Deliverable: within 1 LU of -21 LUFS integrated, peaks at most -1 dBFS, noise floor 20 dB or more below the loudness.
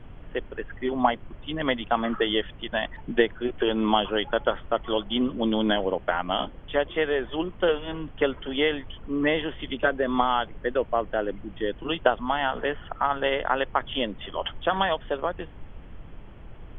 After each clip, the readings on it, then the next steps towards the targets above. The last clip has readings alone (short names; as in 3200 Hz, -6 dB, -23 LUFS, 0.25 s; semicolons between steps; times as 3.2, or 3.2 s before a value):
noise floor -45 dBFS; noise floor target -47 dBFS; loudness -27.0 LUFS; peak -4.5 dBFS; loudness target -21.0 LUFS
-> noise print and reduce 6 dB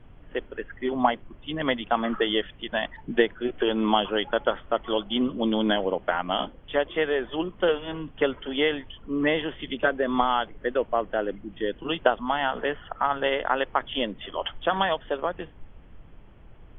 noise floor -49 dBFS; loudness -27.0 LUFS; peak -4.5 dBFS; loudness target -21.0 LUFS
-> gain +6 dB; limiter -1 dBFS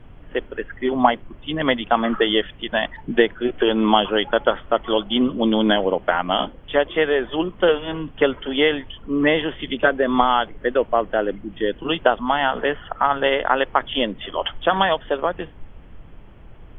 loudness -21.0 LUFS; peak -1.0 dBFS; noise floor -43 dBFS